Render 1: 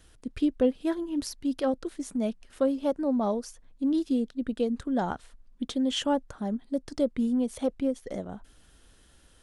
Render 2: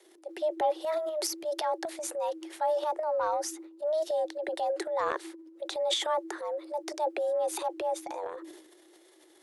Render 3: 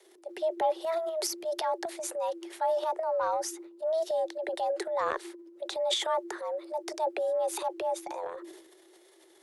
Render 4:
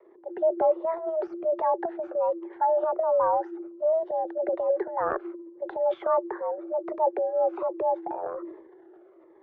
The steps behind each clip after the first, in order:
frequency shift +310 Hz; transient shaper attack -3 dB, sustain +11 dB; gain -3 dB
frequency shift +15 Hz
LPF 1400 Hz 24 dB/oct; cascading phaser falling 1.3 Hz; gain +8 dB

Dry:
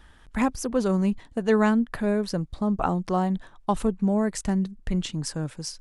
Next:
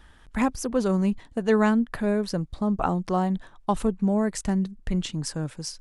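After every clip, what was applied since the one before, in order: nothing audible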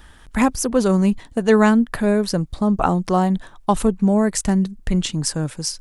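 high shelf 7300 Hz +8 dB; gain +6.5 dB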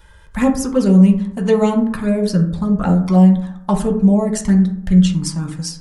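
envelope flanger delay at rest 2.1 ms, full sweep at -11.5 dBFS; reverb RT60 0.70 s, pre-delay 3 ms, DRR 1.5 dB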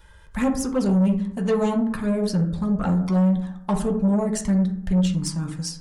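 soft clip -11 dBFS, distortion -12 dB; gain -4 dB

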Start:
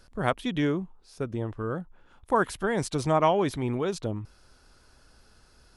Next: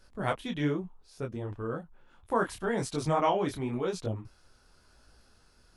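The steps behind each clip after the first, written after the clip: detuned doubles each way 34 cents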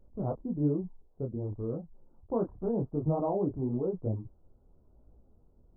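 Gaussian blur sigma 13 samples; gain +2.5 dB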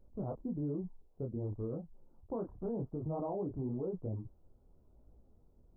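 limiter -27.5 dBFS, peak gain reduction 9.5 dB; gain -2.5 dB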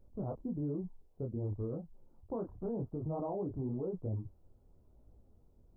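bell 95 Hz +5 dB 0.38 oct

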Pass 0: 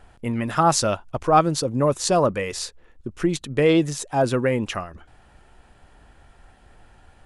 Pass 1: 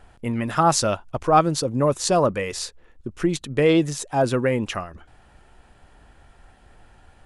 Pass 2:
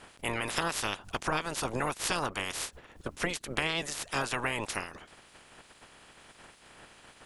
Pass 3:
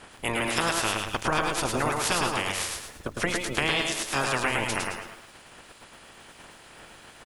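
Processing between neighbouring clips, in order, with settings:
nothing audible
spectral limiter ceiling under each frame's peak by 30 dB; compressor 12:1, threshold -22 dBFS, peak gain reduction 12.5 dB; gain -5 dB
on a send: feedback echo 0.107 s, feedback 31%, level -4 dB; on the sum: lo-fi delay 0.116 s, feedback 35%, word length 9-bit, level -9 dB; gain +4 dB

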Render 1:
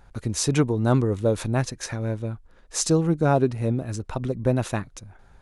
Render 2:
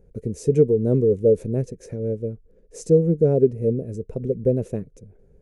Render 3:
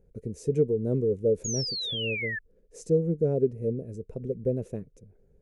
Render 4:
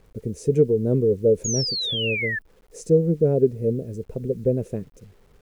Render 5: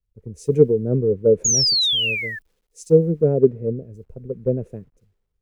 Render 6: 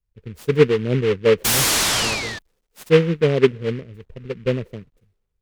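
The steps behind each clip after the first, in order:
EQ curve 110 Hz 0 dB, 180 Hz +6 dB, 320 Hz 0 dB, 450 Hz +14 dB, 810 Hz -18 dB, 1200 Hz -23 dB, 2300 Hz -14 dB, 3700 Hz -22 dB, 6200 Hz -12 dB, 11000 Hz -10 dB; gain -2.5 dB
painted sound fall, 1.44–2.39, 1700–6900 Hz -25 dBFS; gain -7.5 dB
bit-crush 11-bit; gain +6 dB
three-band expander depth 100%
noise-modulated delay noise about 1900 Hz, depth 0.073 ms

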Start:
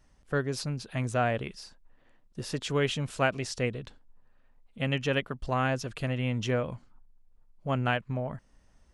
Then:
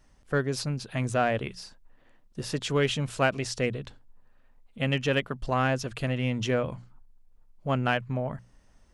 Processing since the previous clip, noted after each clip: in parallel at -9 dB: hard clip -22.5 dBFS, distortion -15 dB; on the sum: notches 60/120/180 Hz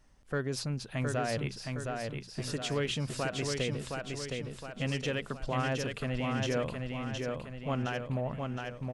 limiter -21 dBFS, peak gain reduction 10 dB; on a send: feedback echo 0.715 s, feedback 50%, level -4 dB; on the sum: gain -3 dB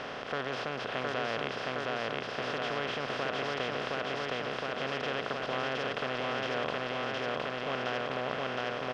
per-bin compression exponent 0.2; HPF 650 Hz 6 dB/oct; air absorption 250 m; gain -3 dB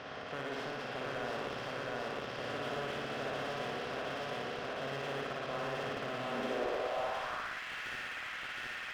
flutter echo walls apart 9.9 m, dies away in 1.2 s; high-pass sweep 66 Hz -> 1900 Hz, 5.8–7.63; slew limiter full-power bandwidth 57 Hz; gain -7.5 dB

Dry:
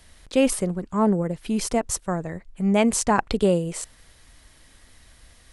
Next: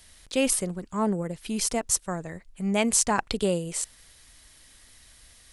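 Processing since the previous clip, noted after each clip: high shelf 2300 Hz +10 dB; gain -6 dB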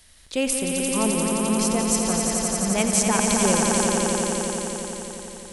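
swelling echo 87 ms, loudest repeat 5, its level -5 dB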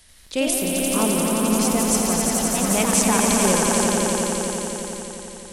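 echoes that change speed 89 ms, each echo +2 st, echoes 3, each echo -6 dB; gain +1 dB

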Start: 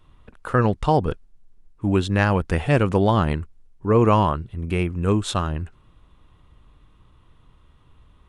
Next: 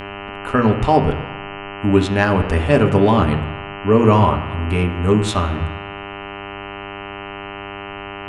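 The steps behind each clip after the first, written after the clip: buzz 100 Hz, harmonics 31, -35 dBFS -2 dB/oct; on a send at -5 dB: reverb RT60 1.1 s, pre-delay 3 ms; on the sum: gain +2.5 dB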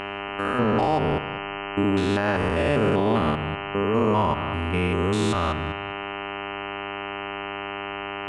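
stepped spectrum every 0.2 s; low shelf 150 Hz -9.5 dB; limiter -12.5 dBFS, peak gain reduction 7 dB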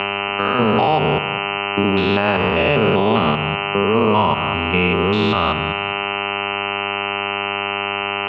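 speaker cabinet 130–3800 Hz, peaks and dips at 290 Hz -9 dB, 560 Hz -3 dB, 1700 Hz -7 dB, 2700 Hz +7 dB; three-band squash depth 40%; gain +8 dB

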